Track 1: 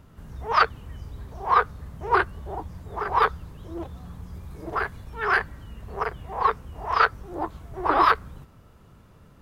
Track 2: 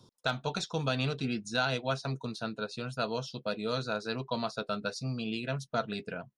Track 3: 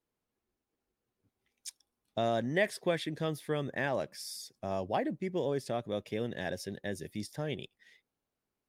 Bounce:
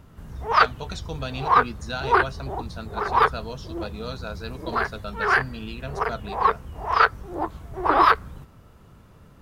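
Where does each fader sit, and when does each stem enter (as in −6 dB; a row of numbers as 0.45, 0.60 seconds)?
+2.0 dB, −1.5 dB, muted; 0.00 s, 0.35 s, muted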